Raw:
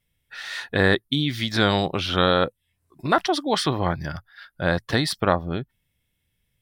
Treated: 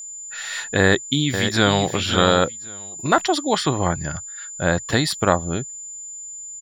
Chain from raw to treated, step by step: 0.79–1.87 s: echo throw 540 ms, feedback 15%, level -8.5 dB; 3.53–4.84 s: treble shelf 6.1 kHz -8.5 dB; whistle 7.1 kHz -35 dBFS; trim +2.5 dB

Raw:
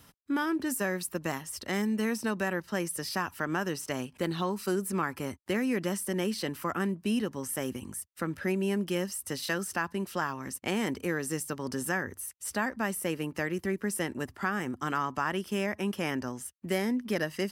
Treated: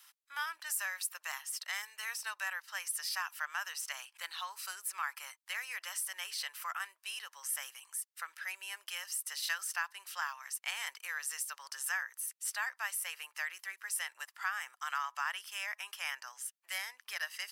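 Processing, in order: Bessel high-pass 1.5 kHz, order 6

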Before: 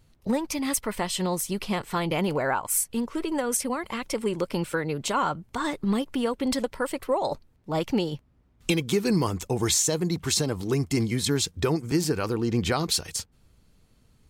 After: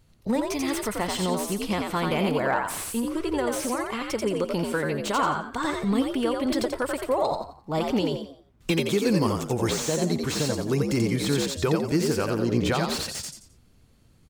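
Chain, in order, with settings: frequency-shifting echo 87 ms, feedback 32%, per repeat +64 Hz, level -4 dB; slew-rate limiter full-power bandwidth 180 Hz

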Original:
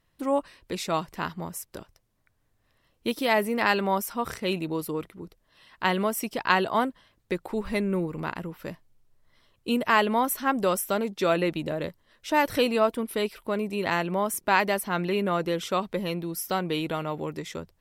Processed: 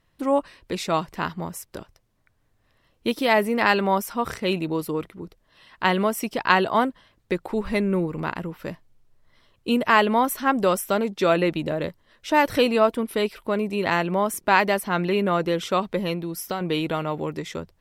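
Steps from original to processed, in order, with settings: treble shelf 7.1 kHz -6 dB; 16.13–16.61 s: compression 3:1, threshold -30 dBFS, peak gain reduction 6.5 dB; trim +4 dB

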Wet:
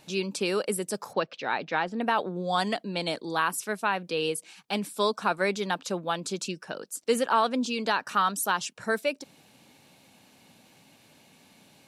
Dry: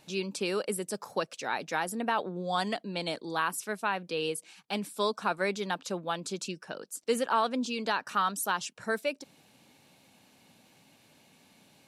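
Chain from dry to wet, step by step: 1.13–2.01 s: low-pass 4.2 kHz 24 dB/octave; trim +3.5 dB

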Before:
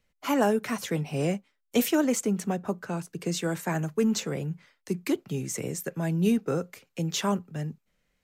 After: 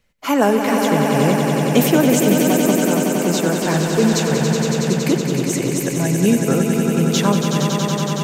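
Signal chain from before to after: 3.62–4.15 s: one-bit delta coder 32 kbps, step -33 dBFS; on a send: echo with a slow build-up 93 ms, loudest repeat 5, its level -7 dB; on the sum: trim +8 dB

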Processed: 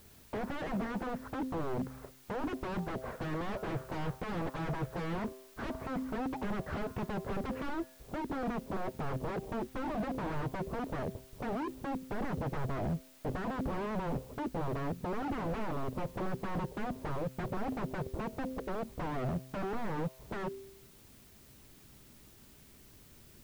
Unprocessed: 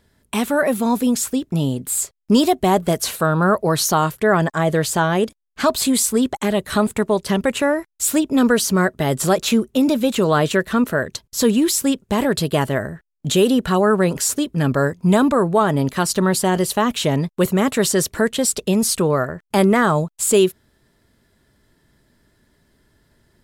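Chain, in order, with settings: Bessel low-pass 1 kHz, order 8, from 7.68 s 500 Hz; compression 8:1, threshold -20 dBFS, peak gain reduction 10.5 dB; feedback comb 130 Hz, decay 0.85 s, harmonics all, mix 40%; wavefolder -33 dBFS; added noise violet -60 dBFS; slew-rate limiter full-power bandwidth 6.9 Hz; trim +5 dB

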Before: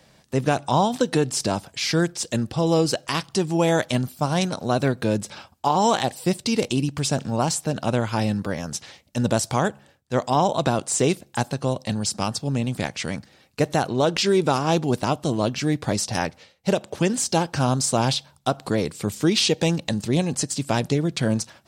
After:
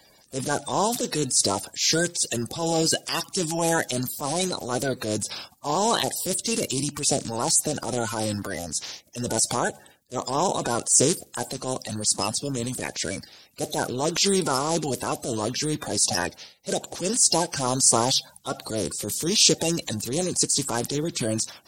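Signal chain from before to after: coarse spectral quantiser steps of 30 dB; tone controls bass -4 dB, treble +13 dB; transient shaper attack -8 dB, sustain +4 dB; trim -2 dB

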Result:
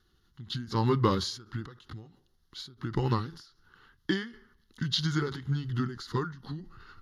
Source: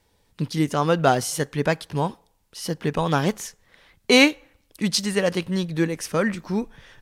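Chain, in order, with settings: rotating-head pitch shifter -4.5 st; static phaser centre 2.4 kHz, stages 6; endings held to a fixed fall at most 110 dB/s

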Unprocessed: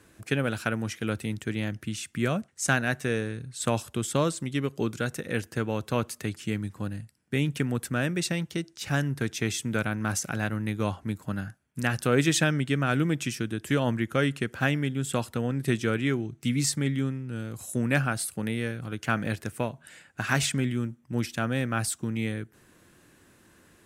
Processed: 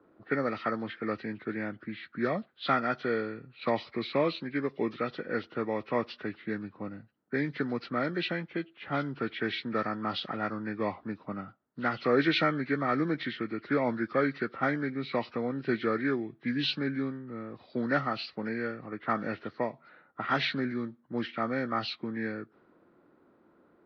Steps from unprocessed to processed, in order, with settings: knee-point frequency compression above 1 kHz 1.5:1; three-band isolator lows -18 dB, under 210 Hz, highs -15 dB, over 4.5 kHz; level-controlled noise filter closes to 940 Hz, open at -23.5 dBFS

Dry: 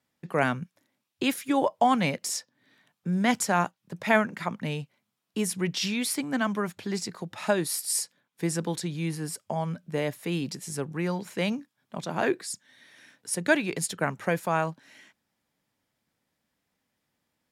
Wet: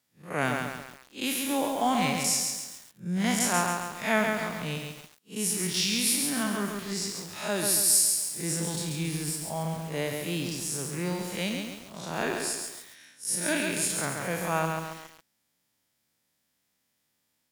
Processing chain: spectral blur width 111 ms; treble shelf 3.1 kHz +12 dB; bit-crushed delay 137 ms, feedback 55%, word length 7-bit, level -3.5 dB; trim -1.5 dB

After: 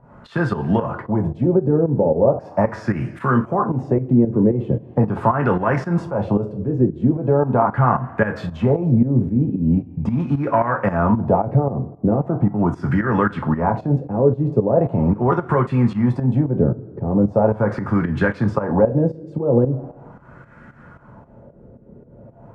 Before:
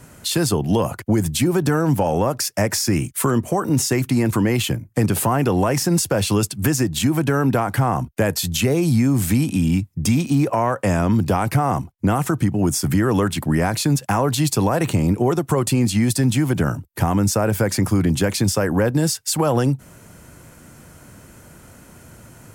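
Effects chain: two-slope reverb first 0.23 s, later 1.6 s, from -19 dB, DRR 3 dB; volume shaper 113 bpm, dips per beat 2, -12 dB, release 216 ms; LFO low-pass sine 0.4 Hz 430–1600 Hz; trim -1 dB

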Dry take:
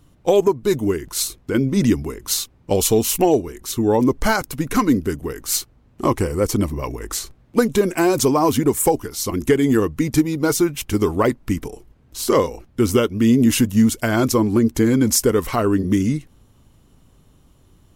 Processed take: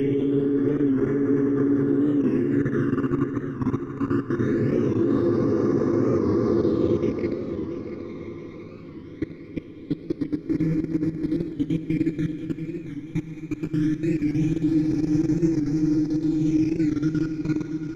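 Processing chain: delay that grows with frequency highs early, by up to 477 ms; low-pass that closes with the level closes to 3 kHz, closed at -17.5 dBFS; peaking EQ 8.3 kHz -15 dB 0.6 oct; hum notches 50/100/150/200/250 Hz; Paulstretch 26×, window 0.50 s, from 9.57 s; phase shifter stages 12, 0.21 Hz, lowest notch 500–3300 Hz; level held to a coarse grid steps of 22 dB; feedback delay 684 ms, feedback 47%, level -10 dB; reverberation RT60 5.2 s, pre-delay 50 ms, DRR 9 dB; warped record 45 rpm, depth 100 cents

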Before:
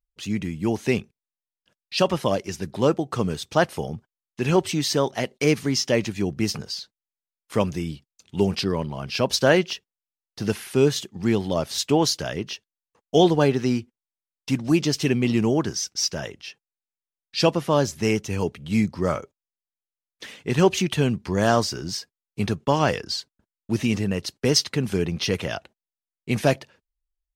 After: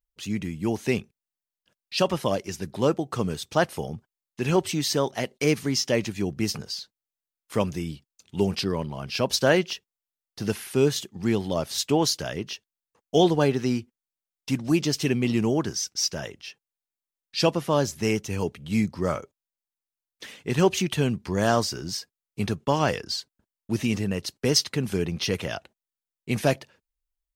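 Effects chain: treble shelf 9.8 kHz +6 dB; trim -2.5 dB

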